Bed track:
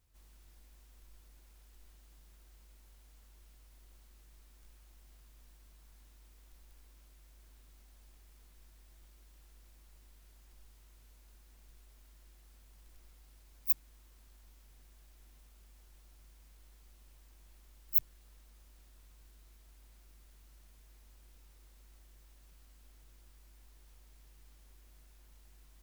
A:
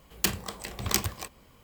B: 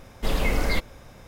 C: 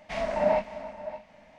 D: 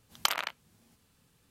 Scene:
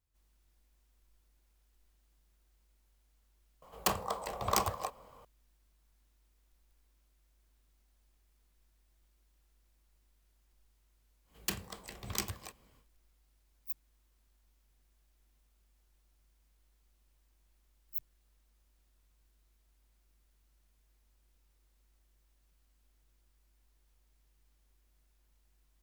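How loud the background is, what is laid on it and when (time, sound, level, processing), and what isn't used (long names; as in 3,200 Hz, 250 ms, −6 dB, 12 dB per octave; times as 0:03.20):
bed track −11 dB
0:03.62: mix in A −7 dB + flat-topped bell 770 Hz +13.5 dB
0:11.24: mix in A −9.5 dB, fades 0.10 s
not used: B, C, D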